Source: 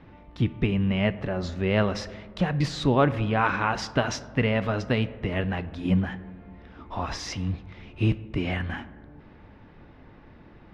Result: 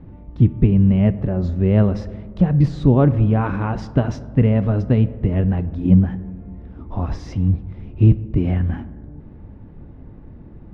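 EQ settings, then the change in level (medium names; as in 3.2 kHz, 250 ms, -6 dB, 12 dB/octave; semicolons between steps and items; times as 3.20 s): tilt shelf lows +9 dB, about 930 Hz; bass shelf 230 Hz +7 dB; -2.5 dB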